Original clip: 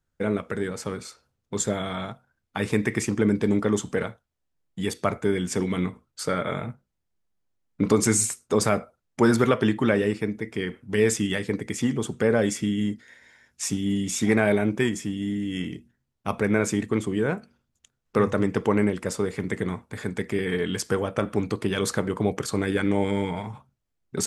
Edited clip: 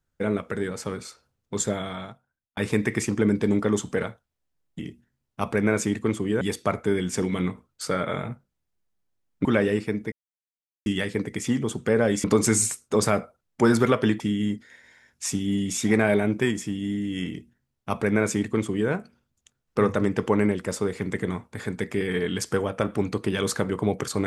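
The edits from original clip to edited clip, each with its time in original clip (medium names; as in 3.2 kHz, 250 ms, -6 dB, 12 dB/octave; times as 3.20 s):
1.66–2.57 s: fade out
7.83–9.79 s: move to 12.58 s
10.46–11.20 s: mute
15.66–17.28 s: copy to 4.79 s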